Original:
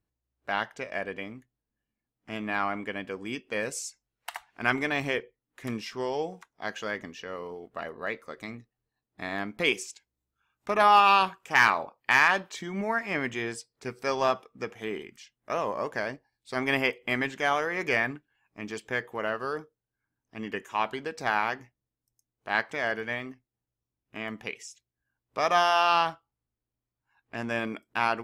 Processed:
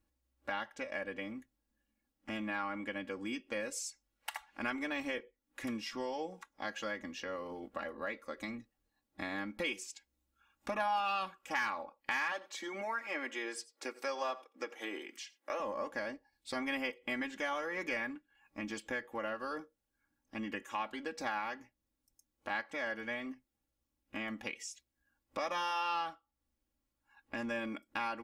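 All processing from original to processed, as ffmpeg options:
-filter_complex "[0:a]asettb=1/sr,asplit=3[a][b][c];[a]atrim=end=12.324[d];[b]atrim=start=12.32:end=15.6,asetpts=PTS-STARTPTS,afade=t=in:d=0.004:c=qsin,afade=t=out:st=3.276:d=0.004:c=qsin,highpass=f=320:w=0.5412,highpass=f=320:w=1.3066,aecho=1:1:88:0.0841,atrim=end_sample=144648[e];[c]atrim=start=15.596[f];[d][e]acrossfade=d=0.004:c1=hsin:c2=qsin[g];[g][f]acrossfade=d=0.004:c1=qsin:c2=hsin,aecho=1:1:3.6:0.9,acompressor=threshold=-42dB:ratio=2.5,volume=1dB"

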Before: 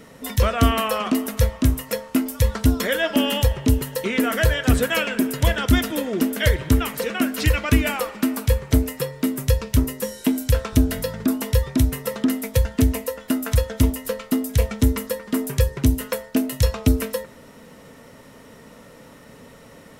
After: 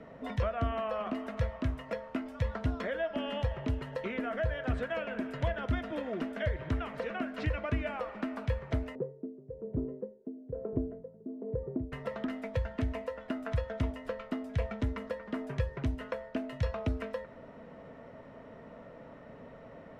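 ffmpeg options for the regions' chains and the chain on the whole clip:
-filter_complex "[0:a]asettb=1/sr,asplit=3[a][b][c];[a]atrim=end=8.954[d];[b]atrim=start=8.95:end=11.92,asetpts=PTS-STARTPTS,afade=t=in:d=0.004:c=qsin,afade=t=out:st=2.966:d=0.004:c=qsin,lowpass=f=410:t=q:w=4.7,lowshelf=f=110:t=q:w=1.5:g=-11,aeval=exprs='val(0)*pow(10,-22*(0.5-0.5*cos(2*PI*1.1*n/s))/20)':c=same[e];[c]atrim=start=11.916[f];[d][e]acrossfade=d=0.004:c1=hsin:c2=qsin[g];[g][f]acrossfade=d=0.004:c1=qsin:c2=hsin,lowpass=1.9k,equalizer=f=650:w=4.8:g=9.5,acrossover=split=100|1000[h][i][j];[h]acompressor=threshold=-27dB:ratio=4[k];[i]acompressor=threshold=-30dB:ratio=4[l];[j]acompressor=threshold=-35dB:ratio=4[m];[k][l][m]amix=inputs=3:normalize=0,volume=-5.5dB"

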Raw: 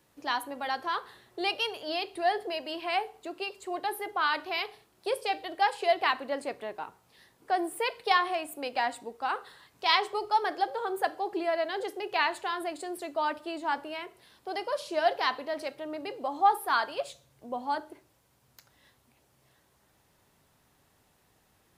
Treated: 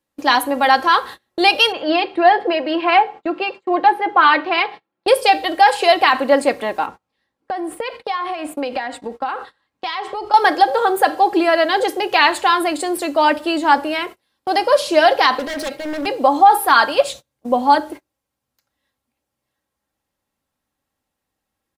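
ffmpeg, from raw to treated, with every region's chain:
-filter_complex "[0:a]asettb=1/sr,asplit=3[a][b][c];[a]atrim=end=1.724[d];[b]atrim=start=1.72:end=5.08,asetpts=PTS-STARTPTS,afade=t=in:d=0.004:c=qsin,afade=t=out:st=3.356:d=0.004:c=qsin,highpass=130,lowpass=2.4k,aecho=1:1:5.9:0.34,atrim=end_sample=148176[e];[c]atrim=start=5.076[f];[d][e]acrossfade=d=0.004:c1=hsin:c2=qsin[g];[g][f]acrossfade=d=0.004:c1=qsin:c2=hsin,asettb=1/sr,asplit=3[h][i][j];[h]atrim=end=6.864[k];[i]atrim=start=6.86:end=10.34,asetpts=PTS-STARTPTS,afade=t=in:d=0.004:c=qsin,afade=t=out:st=3.476:d=0.004:c=qsin,aemphasis=mode=reproduction:type=50fm,acompressor=threshold=-37dB:ratio=12:attack=3.2:release=140:knee=1:detection=peak[l];[j]atrim=start=10.336[m];[k][l]acrossfade=d=0.004:c1=hsin:c2=qsin[n];[n][m]acrossfade=d=0.004:c1=qsin:c2=hsin,asettb=1/sr,asplit=3[o][p][q];[o]atrim=end=15.394[r];[p]atrim=start=15.39:end=16.06,asetpts=PTS-STARTPTS,afade=t=in:d=0.004:c=qsin,afade=t=out:st=0.666:d=0.004:c=qsin,acompressor=threshold=-36dB:ratio=2:attack=3.2:release=140:knee=1:detection=peak,aeval=exprs='0.0141*(abs(mod(val(0)/0.0141+3,4)-2)-1)':c=same[s];[q]atrim=start=16.056[t];[r][s]acrossfade=d=0.004:c1=hsin:c2=qsin[u];[u][t]acrossfade=d=0.004:c1=qsin:c2=hsin,aecho=1:1:3.7:0.44,agate=range=-29dB:threshold=-47dB:ratio=16:detection=peak,alimiter=level_in=17.5dB:limit=-1dB:release=50:level=0:latency=1,volume=-1dB"

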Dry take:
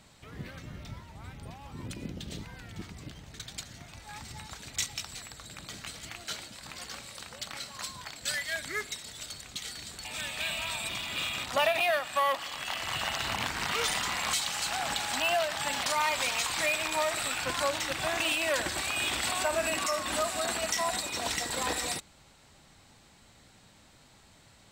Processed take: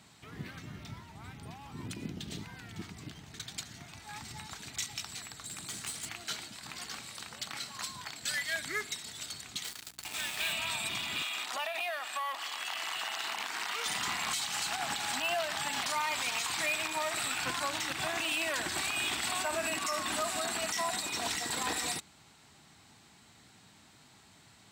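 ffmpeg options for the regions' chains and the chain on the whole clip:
-filter_complex "[0:a]asettb=1/sr,asplit=3[a][b][c];[a]atrim=end=5.444[d];[b]atrim=start=5.44:end=6.09,asetpts=PTS-STARTPTS,afade=t=in:d=0.004:c=qsin,afade=t=out:st=0.646:d=0.004:c=qsin,equalizer=f=9.1k:t=o:w=0.92:g=11,aeval=exprs='clip(val(0),-1,0.0119)':c=same[e];[c]atrim=start=6.086[f];[d][e]acrossfade=d=0.004:c1=hsin:c2=qsin[g];[g][f]acrossfade=d=0.004:c1=qsin:c2=hsin,asettb=1/sr,asplit=3[h][i][j];[h]atrim=end=9.644[k];[i]atrim=start=9.64:end=10.53,asetpts=PTS-STARTPTS,afade=t=in:d=0.004:c=qsin,afade=t=out:st=0.886:d=0.004:c=qsin,equalizer=f=150:t=o:w=1.7:g=-6.5,acrusher=bits=5:mix=0:aa=0.5,aeval=exprs='val(0)+0.000891*(sin(2*PI*60*n/s)+sin(2*PI*2*60*n/s)/2+sin(2*PI*3*60*n/s)/3+sin(2*PI*4*60*n/s)/4+sin(2*PI*5*60*n/s)/5)':c=same[l];[j]atrim=start=10.526[m];[k][l]acrossfade=d=0.004:c1=hsin:c2=qsin[n];[n][m]acrossfade=d=0.004:c1=qsin:c2=hsin,asettb=1/sr,asplit=3[o][p][q];[o]atrim=end=11.224[r];[p]atrim=start=11.22:end=13.86,asetpts=PTS-STARTPTS,afade=t=in:d=0.004:c=qsin,afade=t=out:st=2.636:d=0.004:c=qsin,highpass=440,acompressor=threshold=-32dB:ratio=4:attack=3.2:release=140:knee=1:detection=peak[s];[q]atrim=start=13.856[t];[r][s]acrossfade=d=0.004:c1=hsin:c2=qsin[u];[u][t]acrossfade=d=0.004:c1=qsin:c2=hsin,highpass=100,equalizer=f=540:w=5.3:g=-11,alimiter=limit=-23dB:level=0:latency=1:release=81"

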